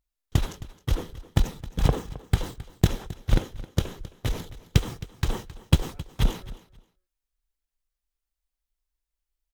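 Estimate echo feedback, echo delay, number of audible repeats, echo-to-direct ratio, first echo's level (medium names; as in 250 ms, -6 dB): 18%, 266 ms, 2, -17.5 dB, -17.5 dB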